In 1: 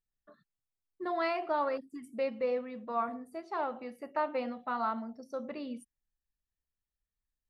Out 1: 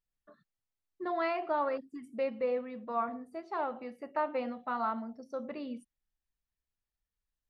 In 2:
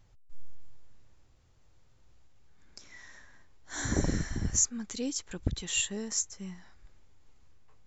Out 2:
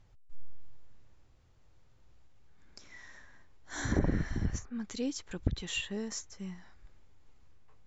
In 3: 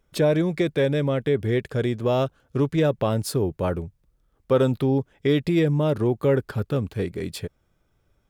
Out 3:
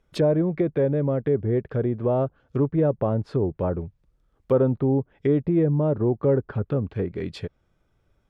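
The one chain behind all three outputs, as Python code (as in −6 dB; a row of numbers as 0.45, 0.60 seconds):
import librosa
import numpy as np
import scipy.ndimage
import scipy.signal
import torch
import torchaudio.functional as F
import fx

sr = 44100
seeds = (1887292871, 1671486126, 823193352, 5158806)

y = fx.env_lowpass_down(x, sr, base_hz=980.0, full_db=-20.5)
y = fx.high_shelf(y, sr, hz=6500.0, db=-9.0)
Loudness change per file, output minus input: 0.0, −4.0, −0.5 LU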